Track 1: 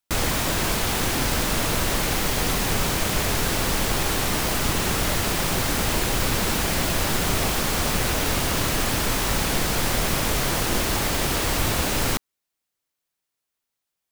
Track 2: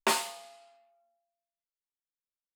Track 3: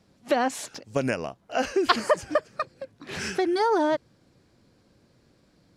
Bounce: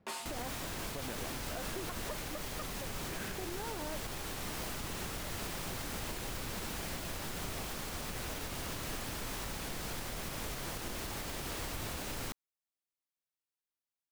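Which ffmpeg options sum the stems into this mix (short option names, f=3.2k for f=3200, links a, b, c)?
-filter_complex "[0:a]adelay=150,volume=-15dB[a];[1:a]volume=-7dB[b];[2:a]lowpass=2k,acompressor=threshold=-33dB:ratio=6,volume=-5dB[c];[a][b][c]amix=inputs=3:normalize=0,alimiter=level_in=5.5dB:limit=-24dB:level=0:latency=1:release=124,volume=-5.5dB"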